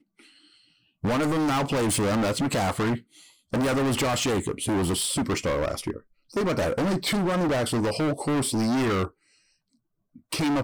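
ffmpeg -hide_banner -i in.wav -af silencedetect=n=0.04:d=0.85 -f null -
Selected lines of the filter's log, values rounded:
silence_start: 0.00
silence_end: 1.04 | silence_duration: 1.04
silence_start: 9.06
silence_end: 10.32 | silence_duration: 1.27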